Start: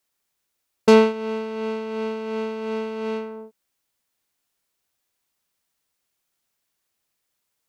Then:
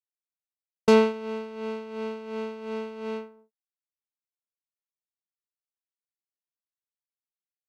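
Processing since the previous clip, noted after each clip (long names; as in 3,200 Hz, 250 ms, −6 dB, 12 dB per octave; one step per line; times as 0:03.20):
downward expander −25 dBFS
level −4.5 dB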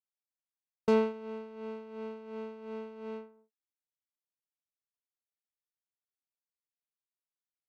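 high-shelf EQ 2,500 Hz −9 dB
level −7.5 dB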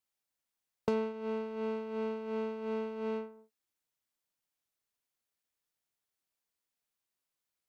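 downward compressor 4 to 1, threshold −38 dBFS, peak gain reduction 14 dB
level +7 dB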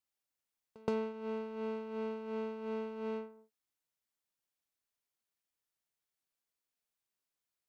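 echo ahead of the sound 122 ms −23.5 dB
level −3 dB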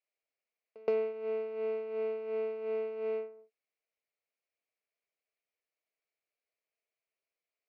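loudspeaker in its box 390–4,400 Hz, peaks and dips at 450 Hz +8 dB, 640 Hz +8 dB, 920 Hz −8 dB, 1,500 Hz −5 dB, 2,300 Hz +8 dB, 3,500 Hz −10 dB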